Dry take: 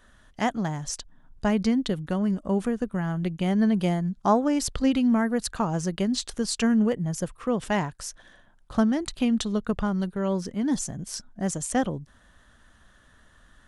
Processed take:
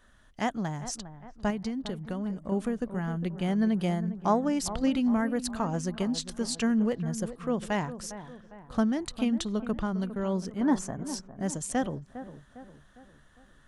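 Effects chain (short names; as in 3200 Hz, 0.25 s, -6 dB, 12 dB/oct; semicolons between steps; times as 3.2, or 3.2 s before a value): 1.5–2.52 compressor, threshold -26 dBFS, peak gain reduction 7.5 dB; 10.61–11.06 EQ curve 150 Hz 0 dB, 1100 Hz +14 dB, 3800 Hz -4 dB; dark delay 0.405 s, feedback 46%, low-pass 1600 Hz, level -12.5 dB; gain -4 dB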